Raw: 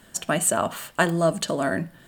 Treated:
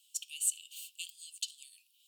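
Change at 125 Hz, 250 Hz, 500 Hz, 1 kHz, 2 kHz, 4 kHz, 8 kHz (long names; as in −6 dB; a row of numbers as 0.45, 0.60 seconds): below −40 dB, below −40 dB, below −40 dB, below −40 dB, −25.0 dB, −8.0 dB, −8.0 dB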